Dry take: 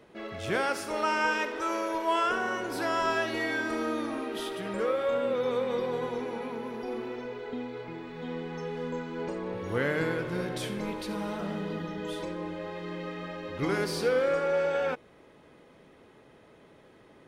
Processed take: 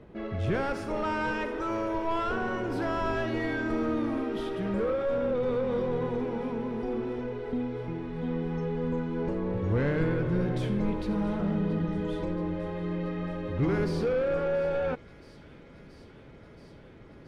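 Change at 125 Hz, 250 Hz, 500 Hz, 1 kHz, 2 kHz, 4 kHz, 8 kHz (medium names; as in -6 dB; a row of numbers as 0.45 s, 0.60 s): +9.0 dB, +5.0 dB, +0.5 dB, -3.0 dB, -4.0 dB, -7.0 dB, under -10 dB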